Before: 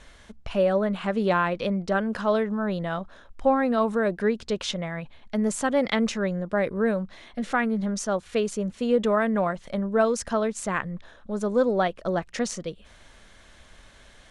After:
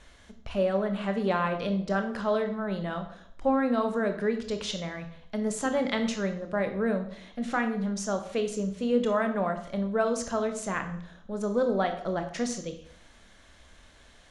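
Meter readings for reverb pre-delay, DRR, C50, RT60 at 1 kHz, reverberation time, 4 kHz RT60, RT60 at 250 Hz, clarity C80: 19 ms, 6.5 dB, 10.0 dB, 0.55 s, 0.60 s, 0.70 s, 0.70 s, 13.0 dB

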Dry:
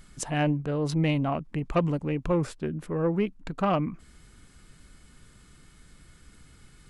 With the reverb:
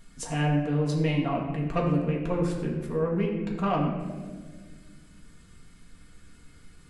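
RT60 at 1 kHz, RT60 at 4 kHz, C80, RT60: 1.3 s, 0.90 s, 6.0 dB, 1.5 s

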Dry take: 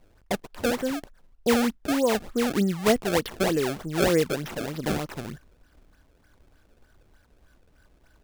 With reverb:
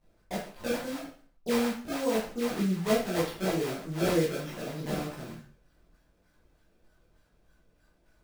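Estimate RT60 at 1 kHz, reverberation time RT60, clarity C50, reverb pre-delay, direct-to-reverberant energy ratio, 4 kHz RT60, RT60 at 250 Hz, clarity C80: 0.45 s, 0.45 s, 4.0 dB, 7 ms, -8.0 dB, 0.40 s, 0.45 s, 8.5 dB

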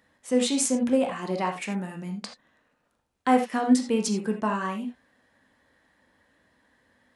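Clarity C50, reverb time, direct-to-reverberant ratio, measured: 7.0 dB, no single decay rate, 3.0 dB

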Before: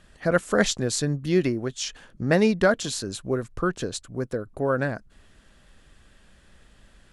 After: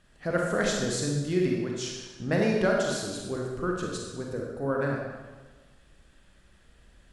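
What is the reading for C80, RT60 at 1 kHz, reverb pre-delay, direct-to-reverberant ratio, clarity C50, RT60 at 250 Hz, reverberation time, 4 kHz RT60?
3.0 dB, 1.3 s, 32 ms, -1.5 dB, 1.0 dB, 1.4 s, 1.3 s, 1.1 s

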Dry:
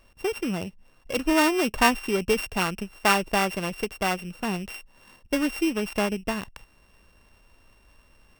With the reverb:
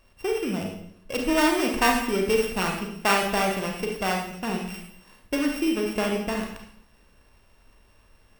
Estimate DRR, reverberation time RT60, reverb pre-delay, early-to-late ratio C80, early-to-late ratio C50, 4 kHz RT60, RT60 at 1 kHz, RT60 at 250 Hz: 0.5 dB, 0.70 s, 31 ms, 7.5 dB, 4.0 dB, 0.65 s, 0.65 s, 0.85 s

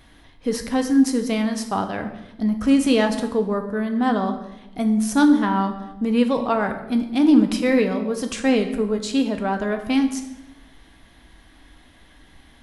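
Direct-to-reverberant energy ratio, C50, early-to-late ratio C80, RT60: 5.0 dB, 9.5 dB, 11.0 dB, 0.95 s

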